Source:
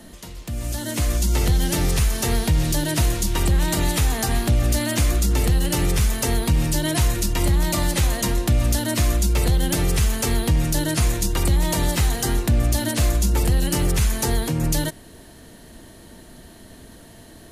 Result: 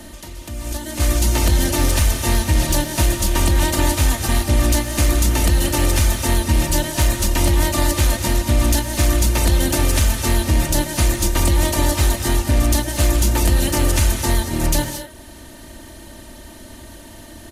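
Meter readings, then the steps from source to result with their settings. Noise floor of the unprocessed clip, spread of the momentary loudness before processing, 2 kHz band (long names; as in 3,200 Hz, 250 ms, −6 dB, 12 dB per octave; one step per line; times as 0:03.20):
−45 dBFS, 2 LU, +4.0 dB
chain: compressor on every frequency bin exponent 0.6
noise gate −17 dBFS, range −13 dB
reverb reduction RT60 0.57 s
comb filter 3.3 ms, depth 56%
in parallel at +2 dB: downward compressor, threshold −23 dBFS, peak gain reduction 11.5 dB
on the sum: soft clipping −4 dBFS, distortion −24 dB
reverb whose tail is shaped and stops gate 250 ms rising, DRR 6.5 dB
level −2 dB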